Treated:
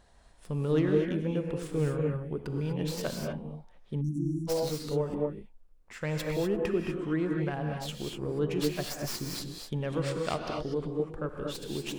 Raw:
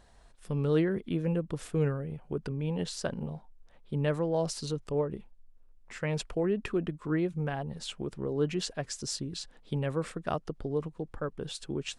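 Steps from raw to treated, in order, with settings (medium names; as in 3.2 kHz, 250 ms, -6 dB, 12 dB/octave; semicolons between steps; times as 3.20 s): tracing distortion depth 0.13 ms; 9.92–10.72 s: peaking EQ 4.3 kHz +11 dB 1.4 oct; gated-style reverb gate 270 ms rising, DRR 1 dB; 4.01–4.48 s: spectral selection erased 350–5500 Hz; trim -1.5 dB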